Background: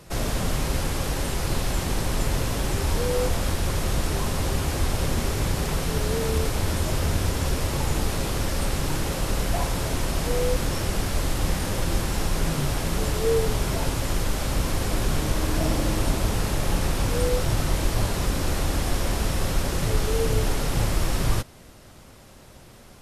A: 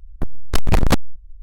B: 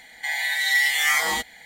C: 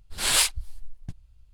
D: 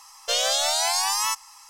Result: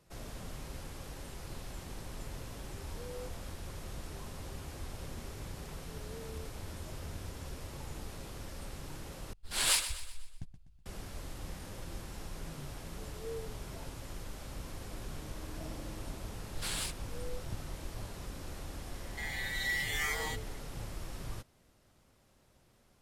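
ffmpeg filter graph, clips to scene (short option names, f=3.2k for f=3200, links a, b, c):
-filter_complex "[3:a]asplit=2[a][b];[0:a]volume=-19dB[c];[a]aecho=1:1:124|248|372|496|620:0.266|0.122|0.0563|0.0259|0.0119[d];[b]acompressor=threshold=-32dB:ratio=8:attack=2.8:release=573:knee=1:detection=rms[e];[c]asplit=2[f][g];[f]atrim=end=9.334[h];[d]atrim=end=1.53,asetpts=PTS-STARTPTS,volume=-7.5dB[i];[g]atrim=start=10.856[j];[e]atrim=end=1.53,asetpts=PTS-STARTPTS,volume=-0.5dB,afade=t=in:d=0.004:c=hsin,afade=t=out:st=1.526:d=0.004:c=hsin,adelay=16440[k];[2:a]atrim=end=1.65,asetpts=PTS-STARTPTS,volume=-14dB,afade=t=in:d=0.004:c=hsin,afade=t=out:st=1.646:d=0.004:c=hsin,adelay=18940[l];[h][i]acrossfade=d=0.004:c1=hsin:c2=hsin[m];[m][j]acrossfade=d=0.004:c1=hsin:c2=hsin[n];[n][k][l]amix=inputs=3:normalize=0"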